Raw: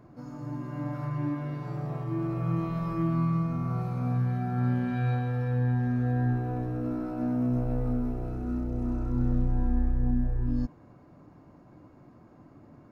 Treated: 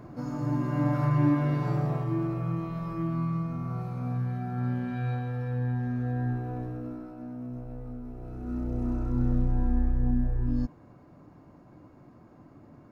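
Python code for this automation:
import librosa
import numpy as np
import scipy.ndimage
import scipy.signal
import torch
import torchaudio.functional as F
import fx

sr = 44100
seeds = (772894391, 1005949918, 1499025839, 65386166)

y = fx.gain(x, sr, db=fx.line((1.69, 7.5), (2.59, -3.0), (6.65, -3.0), (7.24, -11.0), (8.02, -11.0), (8.68, 0.5)))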